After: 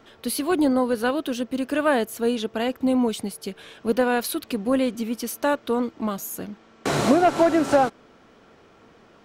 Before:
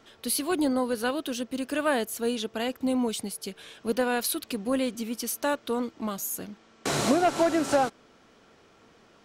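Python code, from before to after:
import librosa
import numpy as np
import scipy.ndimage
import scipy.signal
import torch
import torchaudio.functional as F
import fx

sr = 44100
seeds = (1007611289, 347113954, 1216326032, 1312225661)

y = fx.peak_eq(x, sr, hz=8300.0, db=-7.5, octaves=2.6)
y = y * librosa.db_to_amplitude(5.5)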